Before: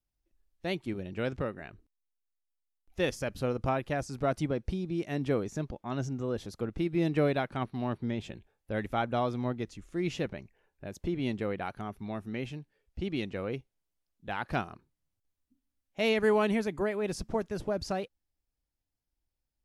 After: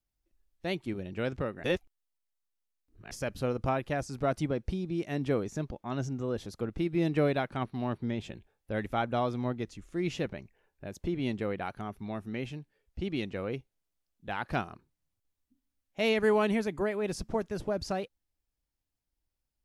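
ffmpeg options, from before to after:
ffmpeg -i in.wav -filter_complex "[0:a]asplit=3[link_01][link_02][link_03];[link_01]atrim=end=1.642[link_04];[link_02]atrim=start=1.638:end=3.112,asetpts=PTS-STARTPTS,areverse[link_05];[link_03]atrim=start=3.108[link_06];[link_04][link_05]acrossfade=duration=0.004:curve1=hsin:curve2=hsin[link_07];[link_07][link_06]acrossfade=duration=0.004:curve1=hsin:curve2=hsin" out.wav

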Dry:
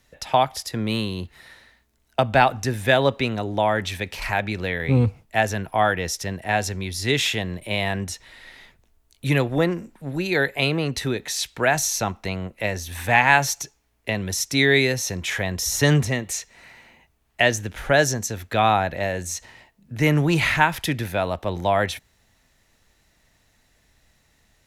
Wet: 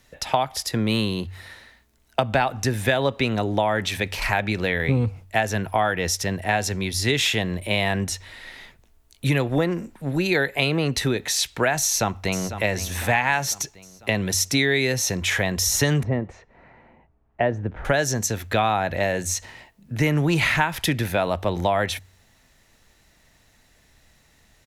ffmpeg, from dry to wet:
ffmpeg -i in.wav -filter_complex "[0:a]asplit=2[link_01][link_02];[link_02]afade=type=in:start_time=11.82:duration=0.01,afade=type=out:start_time=12.51:duration=0.01,aecho=0:1:500|1000|1500|2000|2500|3000:0.211349|0.116242|0.063933|0.0351632|0.0193397|0.0106369[link_03];[link_01][link_03]amix=inputs=2:normalize=0,asettb=1/sr,asplit=3[link_04][link_05][link_06];[link_04]atrim=end=16.034[link_07];[link_05]atrim=start=16.03:end=17.85,asetpts=PTS-STARTPTS,afade=type=in:duration=0.004:curve=qsin,afade=type=out:start_time=1.816:duration=0.004:curve=qsin,lowpass=1000[link_08];[link_06]atrim=start=17.846[link_09];[link_07][link_08]acrossfade=duration=0.004:curve1=hsin:curve2=qsin[link_10];[link_10][link_09]acrossfade=duration=0.004:curve1=qsin:curve2=hsin,bandreject=frequency=46.6:width_type=h:width=4,bandreject=frequency=93.2:width_type=h:width=4,acompressor=threshold=-21dB:ratio=6,volume=4dB" out.wav

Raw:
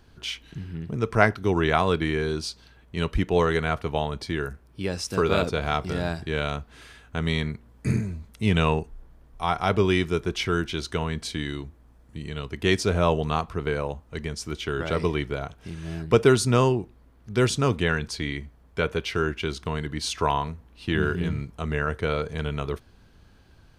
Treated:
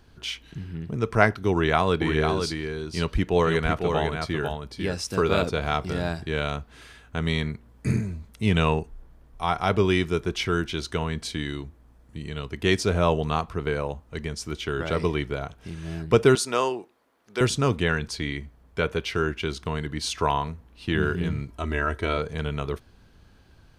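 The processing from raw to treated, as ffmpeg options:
ffmpeg -i in.wav -filter_complex "[0:a]asettb=1/sr,asplit=3[link_01][link_02][link_03];[link_01]atrim=end=1.514[link_04];[link_02]atrim=start=1.51:end=4.94,asetpts=PTS-STARTPTS,afade=type=in:duration=0.004:curve=qsin,afade=type=out:start_time=3.426:duration=0.004:curve=qsin,aecho=1:1:499:0.531,atrim=end_sample=151263[link_05];[link_03]atrim=start=4.936[link_06];[link_04][link_05]acrossfade=duration=0.004:curve1=hsin:curve2=qsin[link_07];[link_07][link_06]acrossfade=duration=0.004:curve1=qsin:curve2=hsin,asettb=1/sr,asplit=3[link_08][link_09][link_10];[link_08]atrim=end=16.354[link_11];[link_09]atrim=start=16.35:end=17.41,asetpts=PTS-STARTPTS,afade=type=in:duration=0.004:curve=qsin,afade=type=out:start_time=1.056:duration=0.004:curve=qsin,highpass=460[link_12];[link_10]atrim=start=17.406[link_13];[link_11][link_12]acrossfade=duration=0.004:curve1=hsin:curve2=qsin[link_14];[link_14][link_13]acrossfade=duration=0.004:curve1=qsin:curve2=hsin,asettb=1/sr,asplit=3[link_15][link_16][link_17];[link_15]atrim=end=21.484[link_18];[link_16]atrim=start=21.48:end=22.18,asetpts=PTS-STARTPTS,afade=type=in:duration=0.004:curve=qsin,afade=type=out:start_time=0.696:duration=0.004:curve=qsin,aecho=1:1:3.1:0.65,atrim=end_sample=30870[link_19];[link_17]atrim=start=22.176[link_20];[link_18][link_19]acrossfade=duration=0.004:curve1=hsin:curve2=qsin[link_21];[link_21][link_20]acrossfade=duration=0.004:curve1=qsin:curve2=hsin" out.wav

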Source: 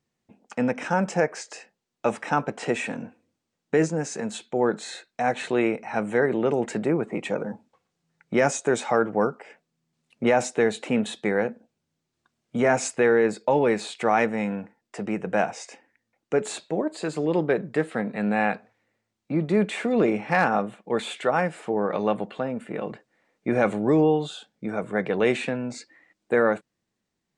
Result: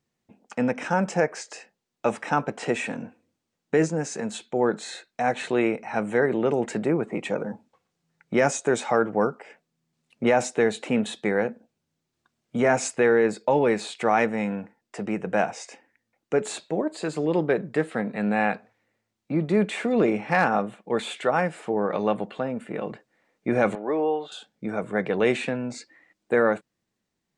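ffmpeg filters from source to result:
ffmpeg -i in.wav -filter_complex "[0:a]asettb=1/sr,asplit=3[link_01][link_02][link_03];[link_01]atrim=end=23.754[link_04];[link_02]atrim=start=23.75:end=24.32,asetpts=PTS-STARTPTS,afade=type=in:duration=0.004:curve=qsin,afade=type=out:start_time=0.566:duration=0.004:curve=qsin,highpass=490,lowpass=2400[link_05];[link_03]atrim=start=24.316[link_06];[link_04][link_05]acrossfade=duration=0.004:curve1=hsin:curve2=qsin[link_07];[link_07][link_06]acrossfade=duration=0.004:curve1=qsin:curve2=hsin" out.wav

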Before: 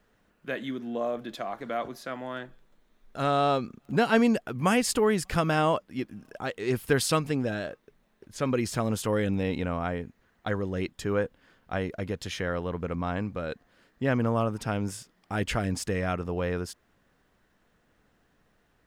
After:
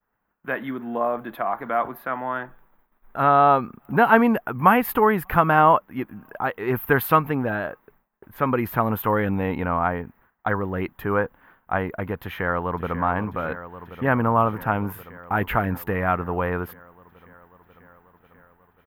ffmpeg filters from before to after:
ffmpeg -i in.wav -filter_complex "[0:a]asplit=2[link_01][link_02];[link_02]afade=type=in:start_time=12.23:duration=0.01,afade=type=out:start_time=13.01:duration=0.01,aecho=0:1:540|1080|1620|2160|2700|3240|3780|4320|4860|5400|5940|6480:0.281838|0.225471|0.180377|0.144301|0.115441|0.0923528|0.0738822|0.0591058|0.0472846|0.0378277|0.0302622|0.0242097[link_03];[link_01][link_03]amix=inputs=2:normalize=0,agate=range=-33dB:threshold=-56dB:ratio=3:detection=peak,firequalizer=gain_entry='entry(560,0);entry(880,11);entry(5200,-24);entry(8400,-22);entry(13000,13)':delay=0.05:min_phase=1,volume=3.5dB" out.wav

